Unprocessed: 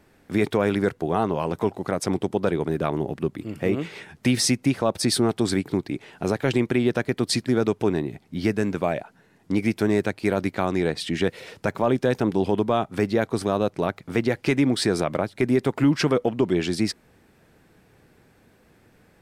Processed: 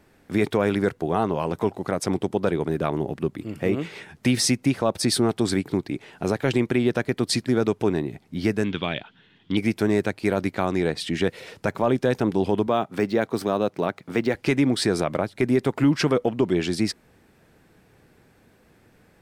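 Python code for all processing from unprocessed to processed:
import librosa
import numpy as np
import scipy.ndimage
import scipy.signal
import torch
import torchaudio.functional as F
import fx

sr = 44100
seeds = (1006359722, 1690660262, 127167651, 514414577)

y = fx.chain(x, sr, fx.lowpass_res(hz=3300.0, q=9.7),
    fx.peak_eq(hz=630.0, db=-8.5, octaves=1.0), at=(8.64, 9.57))
y = fx.chain(y, sr, fx.highpass(hz=140.0, slope=12),
    fx.resample_linear(factor=2), at=(12.67, 14.35))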